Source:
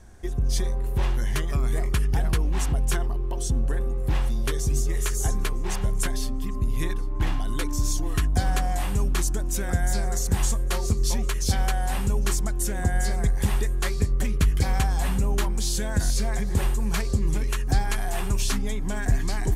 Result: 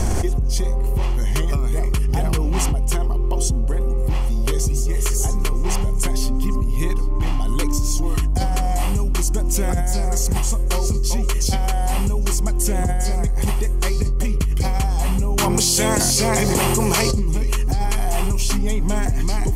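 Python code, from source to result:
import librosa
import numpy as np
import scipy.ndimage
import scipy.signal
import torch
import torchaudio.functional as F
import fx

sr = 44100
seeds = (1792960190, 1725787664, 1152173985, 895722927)

y = fx.highpass(x, sr, hz=76.0, slope=6, at=(2.09, 2.7))
y = fx.spec_clip(y, sr, under_db=22, at=(15.37, 17.1), fade=0.02)
y = fx.peak_eq(y, sr, hz=1600.0, db=-11.5, octaves=0.33)
y = fx.notch(y, sr, hz=3700.0, q=7.2)
y = fx.env_flatten(y, sr, amount_pct=100)
y = y * librosa.db_to_amplitude(-1.5)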